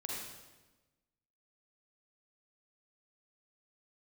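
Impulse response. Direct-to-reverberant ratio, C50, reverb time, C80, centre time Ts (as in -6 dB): -4.0 dB, -2.5 dB, 1.2 s, 1.0 dB, 85 ms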